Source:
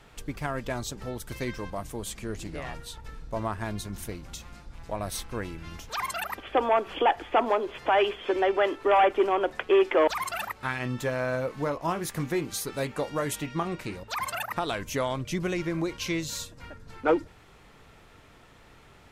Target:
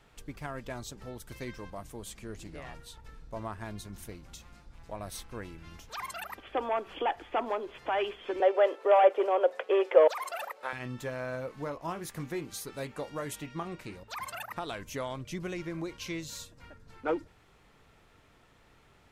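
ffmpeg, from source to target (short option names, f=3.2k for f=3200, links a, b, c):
-filter_complex "[0:a]asettb=1/sr,asplit=3[a][b][c];[a]atrim=end=8.404[d];[b]atrim=start=8.4:end=10.73,asetpts=PTS-STARTPTS,afade=t=in:d=0.004:c=qsin,afade=t=out:st=2.326:d=0.004:c=qsin,highpass=f=520:t=q:w=4.9[e];[c]atrim=start=10.726[f];[d][e]acrossfade=d=0.004:c1=hsin:c2=qsin[g];[g][f]acrossfade=d=0.004:c1=qsin:c2=hsin,volume=-7.5dB"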